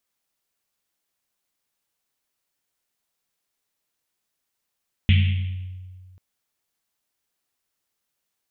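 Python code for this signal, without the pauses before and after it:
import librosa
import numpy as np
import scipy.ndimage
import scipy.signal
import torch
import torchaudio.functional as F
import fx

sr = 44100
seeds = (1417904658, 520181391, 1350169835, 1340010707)

y = fx.risset_drum(sr, seeds[0], length_s=1.09, hz=92.0, decay_s=1.91, noise_hz=2700.0, noise_width_hz=1300.0, noise_pct=15)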